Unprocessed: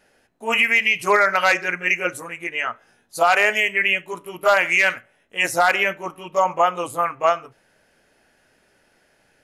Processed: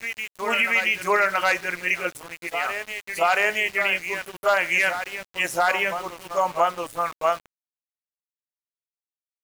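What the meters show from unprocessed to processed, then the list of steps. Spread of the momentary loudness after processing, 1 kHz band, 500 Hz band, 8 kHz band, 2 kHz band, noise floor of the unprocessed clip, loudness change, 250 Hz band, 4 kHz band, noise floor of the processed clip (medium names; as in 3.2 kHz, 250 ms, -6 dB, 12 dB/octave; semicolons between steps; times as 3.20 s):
11 LU, -3.5 dB, -3.5 dB, -2.5 dB, -3.5 dB, -62 dBFS, -4.0 dB, -4.0 dB, -3.5 dB, under -85 dBFS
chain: reverse echo 677 ms -9 dB; small samples zeroed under -31.5 dBFS; trim -4 dB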